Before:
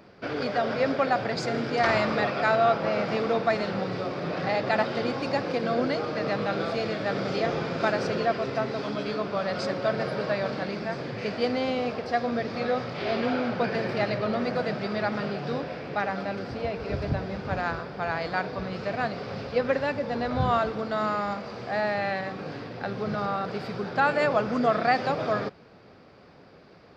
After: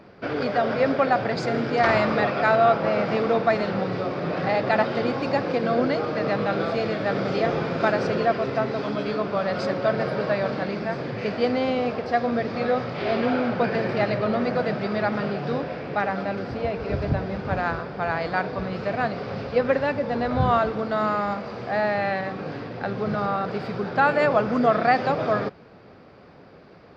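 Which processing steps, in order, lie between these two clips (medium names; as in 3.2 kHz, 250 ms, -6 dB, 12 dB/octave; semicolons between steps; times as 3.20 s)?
treble shelf 4.6 kHz -10 dB; trim +4 dB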